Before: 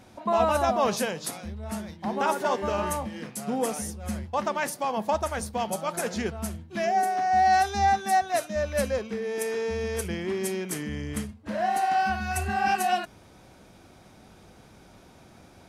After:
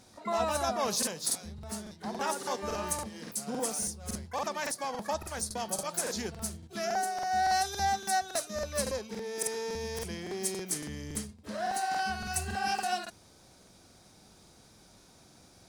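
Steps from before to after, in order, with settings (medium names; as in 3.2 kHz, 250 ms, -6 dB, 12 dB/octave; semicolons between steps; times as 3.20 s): high-order bell 6.4 kHz +10.5 dB; harmony voices +12 st -14 dB; crackling interface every 0.28 s, samples 2048, repeat, from 0.98 s; trim -7.5 dB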